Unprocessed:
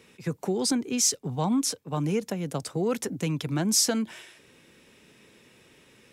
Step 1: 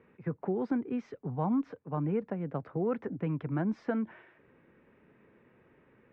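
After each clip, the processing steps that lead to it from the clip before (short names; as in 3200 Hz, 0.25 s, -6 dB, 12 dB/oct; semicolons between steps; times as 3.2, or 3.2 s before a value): LPF 1800 Hz 24 dB/oct; gain -4 dB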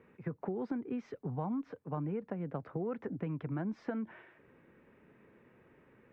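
compressor 4:1, threshold -34 dBFS, peak gain reduction 7.5 dB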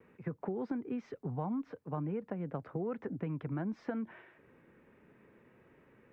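vibrato 0.56 Hz 17 cents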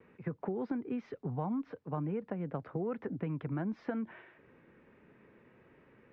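Chebyshev low-pass 4000 Hz, order 2; gain +2 dB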